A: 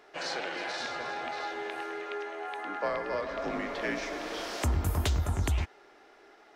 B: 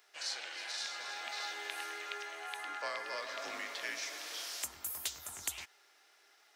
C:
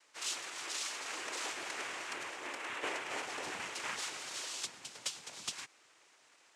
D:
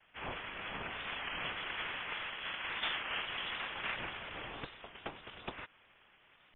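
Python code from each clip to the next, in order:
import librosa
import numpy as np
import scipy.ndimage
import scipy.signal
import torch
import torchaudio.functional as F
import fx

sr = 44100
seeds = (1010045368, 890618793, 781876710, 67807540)

y1 = np.diff(x, prepend=0.0)
y1 = fx.rider(y1, sr, range_db=5, speed_s=0.5)
y1 = y1 * 10.0 ** (5.5 / 20.0)
y2 = fx.noise_vocoder(y1, sr, seeds[0], bands=4)
y2 = y2 * 10.0 ** (1.0 / 20.0)
y3 = fx.freq_invert(y2, sr, carrier_hz=3700)
y3 = fx.record_warp(y3, sr, rpm=33.33, depth_cents=100.0)
y3 = y3 * 10.0 ** (2.0 / 20.0)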